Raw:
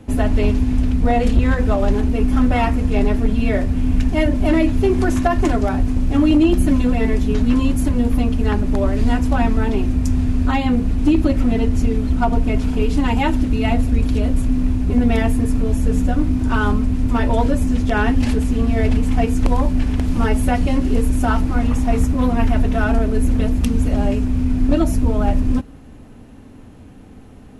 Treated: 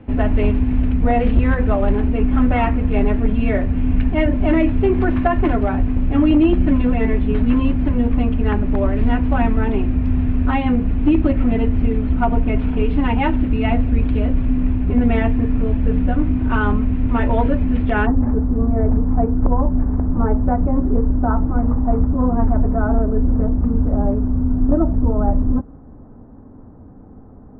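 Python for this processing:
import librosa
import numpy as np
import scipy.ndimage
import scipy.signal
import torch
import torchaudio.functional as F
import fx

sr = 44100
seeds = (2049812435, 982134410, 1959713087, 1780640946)

y = fx.cheby2_lowpass(x, sr, hz=fx.steps((0.0, 6900.0), (18.05, 3200.0)), order=4, stop_db=50)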